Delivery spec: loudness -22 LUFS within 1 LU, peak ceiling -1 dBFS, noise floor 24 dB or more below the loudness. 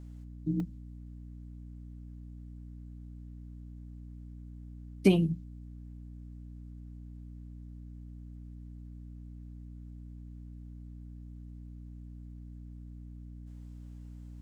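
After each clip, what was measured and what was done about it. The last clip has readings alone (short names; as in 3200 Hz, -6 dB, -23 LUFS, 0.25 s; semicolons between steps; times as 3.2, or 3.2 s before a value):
dropouts 1; longest dropout 1.8 ms; hum 60 Hz; harmonics up to 300 Hz; hum level -44 dBFS; loudness -40.0 LUFS; peak -10.5 dBFS; loudness target -22.0 LUFS
-> interpolate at 0.6, 1.8 ms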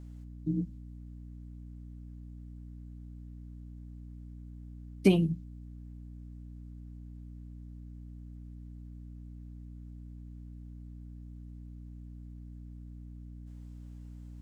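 dropouts 0; hum 60 Hz; harmonics up to 300 Hz; hum level -44 dBFS
-> de-hum 60 Hz, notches 5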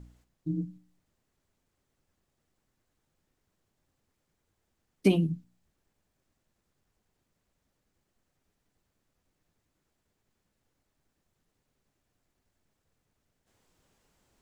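hum none; loudness -30.0 LUFS; peak -10.5 dBFS; loudness target -22.0 LUFS
-> gain +8 dB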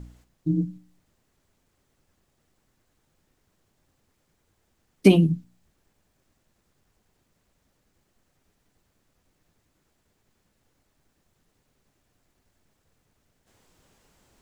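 loudness -22.5 LUFS; peak -2.5 dBFS; noise floor -72 dBFS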